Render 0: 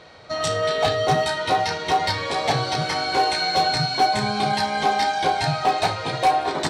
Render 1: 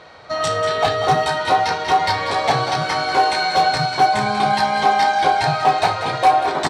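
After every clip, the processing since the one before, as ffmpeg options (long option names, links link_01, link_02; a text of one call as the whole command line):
ffmpeg -i in.wav -af "equalizer=frequency=1100:width_type=o:width=1.9:gain=6,aecho=1:1:190:0.282" out.wav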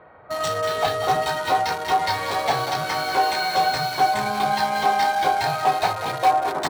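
ffmpeg -i in.wav -filter_complex "[0:a]acrossover=split=350|2000[link_01][link_02][link_03];[link_01]asoftclip=type=tanh:threshold=-27dB[link_04];[link_03]acrusher=bits=4:mix=0:aa=0.5[link_05];[link_04][link_02][link_05]amix=inputs=3:normalize=0,volume=-4dB" out.wav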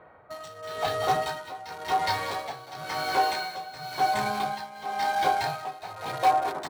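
ffmpeg -i in.wav -af "tremolo=f=0.95:d=0.85,volume=-3.5dB" out.wav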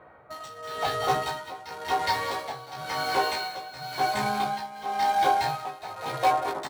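ffmpeg -i in.wav -filter_complex "[0:a]asplit=2[link_01][link_02];[link_02]adelay=15,volume=-5.5dB[link_03];[link_01][link_03]amix=inputs=2:normalize=0" out.wav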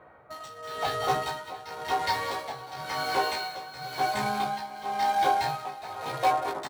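ffmpeg -i in.wav -af "aecho=1:1:696:0.106,volume=-1.5dB" out.wav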